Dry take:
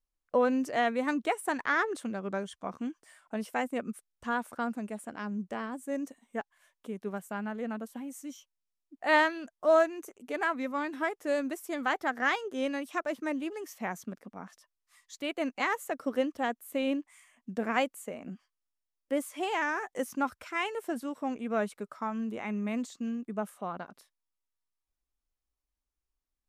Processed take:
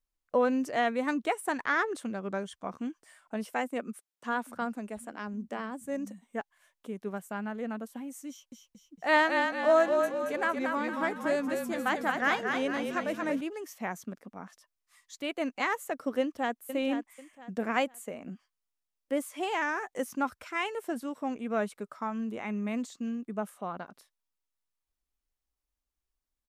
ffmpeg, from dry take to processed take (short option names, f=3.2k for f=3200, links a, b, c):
-filter_complex "[0:a]asettb=1/sr,asplit=3[a][b][c];[a]atrim=end=3.534[d];[b]atrim=start=3.53:end=6.22,asetpts=PTS-STARTPTS,afade=t=in:d=0.004:c=qsin,afade=t=out:st=2.686:d=0.004:c=qsin,acrossover=split=160[e][f];[e]adelay=740[g];[g][f]amix=inputs=2:normalize=0,atrim=end_sample=118629[h];[c]atrim=start=6.216[i];[d][h]acrossfade=d=0.004:c1=hsin:c2=qsin[j];[j][i]acrossfade=d=0.004:c1=qsin:c2=hsin,asettb=1/sr,asplit=3[k][l][m];[k]atrim=end=8.294[n];[l]atrim=start=8.29:end=13.41,asetpts=PTS-STARTPTS,afade=t=in:d=0.004:c=qsin,afade=t=out:st=5.116:d=0.004:c=qsin,asplit=7[o][p][q][r][s][t][u];[p]adelay=228,afreqshift=-30,volume=-4.5dB[v];[q]adelay=456,afreqshift=-60,volume=-10.9dB[w];[r]adelay=684,afreqshift=-90,volume=-17.3dB[x];[s]adelay=912,afreqshift=-120,volume=-23.6dB[y];[t]adelay=1140,afreqshift=-150,volume=-30dB[z];[u]adelay=1368,afreqshift=-180,volume=-36.4dB[aa];[o][v][w][x][y][z][aa]amix=inputs=7:normalize=0,atrim=end_sample=225792[ab];[m]atrim=start=13.406[ac];[n][ab]acrossfade=d=0.004:c1=hsin:c2=qsin[ad];[ad][ac]acrossfade=d=0.004:c1=qsin:c2=hsin,asplit=2[ae][af];[af]afade=t=in:st=16.2:d=0.01,afade=t=out:st=16.64:d=0.01,aecho=0:1:490|980|1470:0.354813|0.106444|0.0319332[ag];[ae][ag]amix=inputs=2:normalize=0"